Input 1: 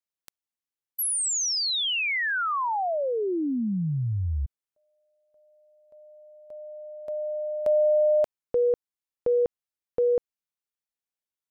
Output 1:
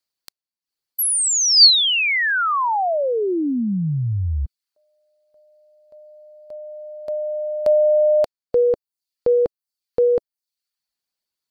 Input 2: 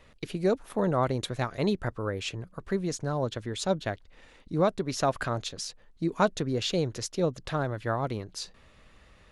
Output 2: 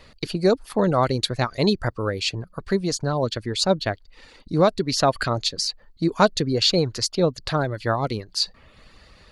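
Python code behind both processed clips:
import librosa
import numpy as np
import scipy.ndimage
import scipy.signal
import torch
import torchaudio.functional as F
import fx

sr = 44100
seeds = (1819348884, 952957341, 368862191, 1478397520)

y = fx.dereverb_blind(x, sr, rt60_s=0.53)
y = fx.peak_eq(y, sr, hz=4500.0, db=13.0, octaves=0.28)
y = y * 10.0 ** (7.0 / 20.0)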